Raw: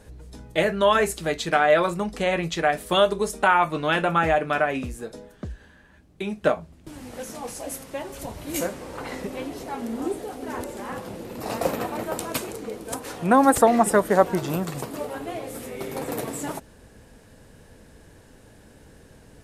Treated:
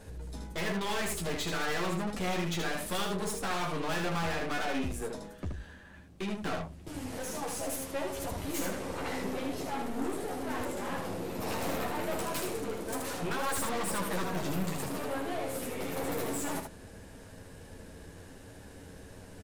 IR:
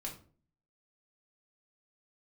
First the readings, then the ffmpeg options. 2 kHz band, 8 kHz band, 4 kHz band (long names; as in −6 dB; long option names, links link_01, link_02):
−9.0 dB, −4.0 dB, −5.5 dB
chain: -af "afftfilt=real='re*lt(hypot(re,im),0.708)':imag='im*lt(hypot(re,im),0.708)':win_size=1024:overlap=0.75,aeval=exprs='(tanh(50.1*val(0)+0.4)-tanh(0.4))/50.1':channel_layout=same,aecho=1:1:11|78:0.668|0.668"